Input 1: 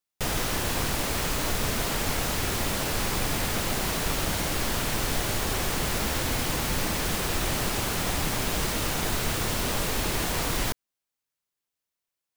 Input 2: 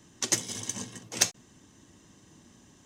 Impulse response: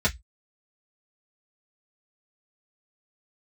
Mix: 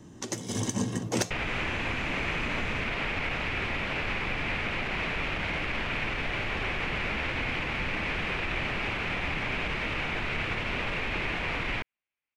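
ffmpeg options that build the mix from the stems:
-filter_complex "[0:a]alimiter=limit=-18.5dB:level=0:latency=1:release=30,lowpass=frequency=2400:width_type=q:width=3.7,adelay=1100,volume=-4dB[link_01];[1:a]acompressor=threshold=-35dB:ratio=6,tiltshelf=frequency=1300:gain=6.5,dynaudnorm=framelen=230:gausssize=3:maxgain=7dB,volume=3dB[link_02];[link_01][link_02]amix=inputs=2:normalize=0"

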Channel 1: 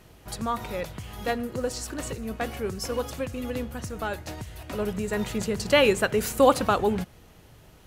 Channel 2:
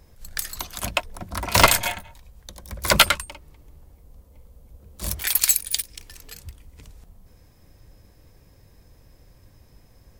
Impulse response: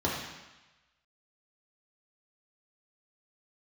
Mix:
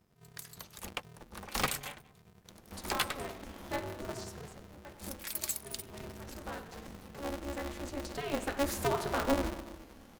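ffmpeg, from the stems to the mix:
-filter_complex "[0:a]alimiter=limit=-17.5dB:level=0:latency=1:release=327,adelay=2450,volume=3.5dB,afade=type=out:start_time=4.07:duration=0.48:silence=0.281838,afade=type=in:start_time=5.47:duration=0.79:silence=0.398107,afade=type=in:start_time=8.09:duration=0.65:silence=0.375837,asplit=2[link_01][link_02];[link_02]volume=-11.5dB[link_03];[1:a]dynaudnorm=framelen=110:gausssize=9:maxgain=9dB,volume=-19dB[link_04];[2:a]atrim=start_sample=2205[link_05];[link_03][link_05]afir=irnorm=-1:irlink=0[link_06];[link_01][link_04][link_06]amix=inputs=3:normalize=0,aeval=exprs='val(0)*sgn(sin(2*PI*140*n/s))':channel_layout=same"

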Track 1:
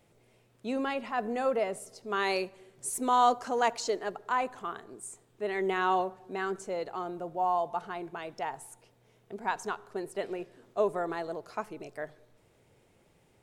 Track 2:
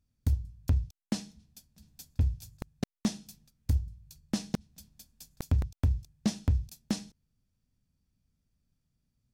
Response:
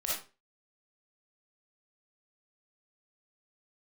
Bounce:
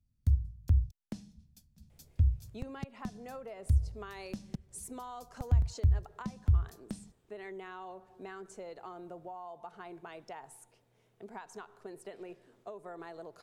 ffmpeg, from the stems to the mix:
-filter_complex "[0:a]acompressor=threshold=-34dB:ratio=6,adelay=1900,volume=-6dB[link_01];[1:a]bass=frequency=250:gain=11,treble=frequency=4000:gain=1,volume=-9dB[link_02];[link_01][link_02]amix=inputs=2:normalize=0,acrossover=split=120[link_03][link_04];[link_04]acompressor=threshold=-40dB:ratio=5[link_05];[link_03][link_05]amix=inputs=2:normalize=0"

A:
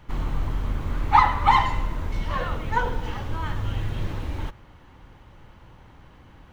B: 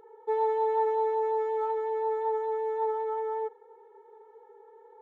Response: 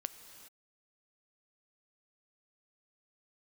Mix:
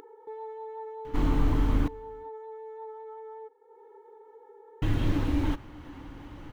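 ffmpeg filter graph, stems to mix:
-filter_complex "[0:a]adelay=1050,volume=-0.5dB,asplit=3[link_01][link_02][link_03];[link_01]atrim=end=1.88,asetpts=PTS-STARTPTS,afade=type=out:start_time=1.876:duration=0.004:curve=hsin[link_04];[link_02]atrim=start=1.88:end=4.82,asetpts=PTS-STARTPTS,volume=0[link_05];[link_03]atrim=start=4.82,asetpts=PTS-STARTPTS,afade=type=in:duration=0.004:curve=hsin[link_06];[link_04][link_05][link_06]concat=n=3:v=0:a=1,asplit=2[link_07][link_08];[link_08]volume=-12.5dB[link_09];[1:a]volume=-14.5dB[link_10];[2:a]atrim=start_sample=2205[link_11];[link_09][link_11]afir=irnorm=-1:irlink=0[link_12];[link_07][link_10][link_12]amix=inputs=3:normalize=0,equalizer=frequency=290:width=4.8:gain=15,acompressor=mode=upward:threshold=-38dB:ratio=2.5"

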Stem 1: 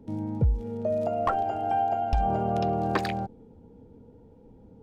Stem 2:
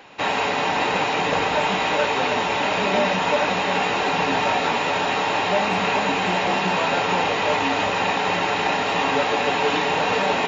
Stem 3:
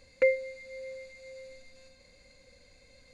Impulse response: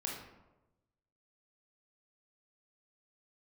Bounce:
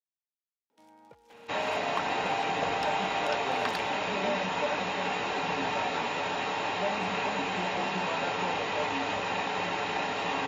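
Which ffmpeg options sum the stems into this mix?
-filter_complex "[0:a]dynaudnorm=framelen=280:gausssize=5:maxgain=9dB,adelay=700,volume=-3.5dB[link_01];[1:a]adelay=1300,volume=-9.5dB[link_02];[link_01]highpass=1300,acompressor=threshold=-31dB:ratio=6,volume=0dB[link_03];[link_02][link_03]amix=inputs=2:normalize=0"

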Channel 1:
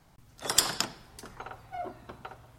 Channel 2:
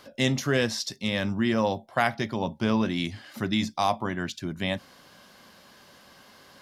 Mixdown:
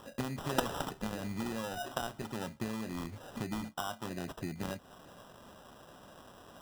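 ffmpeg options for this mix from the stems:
ffmpeg -i stem1.wav -i stem2.wav -filter_complex "[0:a]aecho=1:1:7.3:0.49,dynaudnorm=framelen=140:gausssize=9:maxgain=7dB,volume=-12dB[link_01];[1:a]acompressor=threshold=-33dB:ratio=12,volume=-1dB[link_02];[link_01][link_02]amix=inputs=2:normalize=0,acrusher=samples=20:mix=1:aa=0.000001" out.wav

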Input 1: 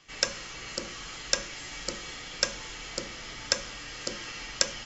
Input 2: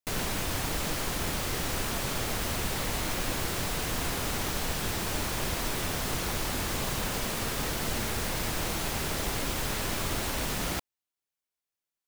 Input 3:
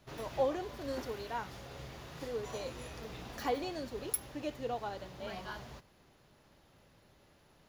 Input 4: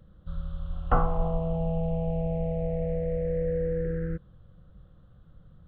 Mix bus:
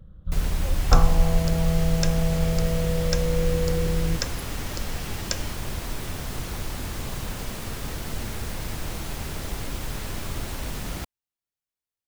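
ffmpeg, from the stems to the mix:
ffmpeg -i stem1.wav -i stem2.wav -i stem3.wav -i stem4.wav -filter_complex "[0:a]adelay=700,volume=-4dB[link_01];[1:a]adelay=250,volume=-4.5dB[link_02];[2:a]adelay=250,volume=-12dB[link_03];[3:a]volume=0dB[link_04];[link_01][link_02][link_03][link_04]amix=inputs=4:normalize=0,lowshelf=frequency=170:gain=9.5" out.wav

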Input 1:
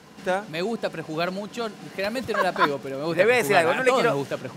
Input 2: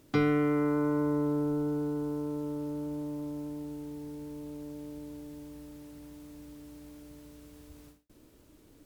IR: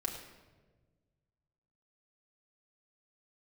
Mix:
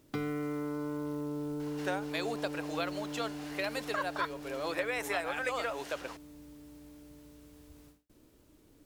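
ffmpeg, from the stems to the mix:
-filter_complex "[0:a]highpass=580,acompressor=threshold=-29dB:ratio=6,adelay=1600,volume=-2dB[link_01];[1:a]acompressor=threshold=-33dB:ratio=2,acrusher=bits=6:mode=log:mix=0:aa=0.000001,volume=-3.5dB[link_02];[link_01][link_02]amix=inputs=2:normalize=0"

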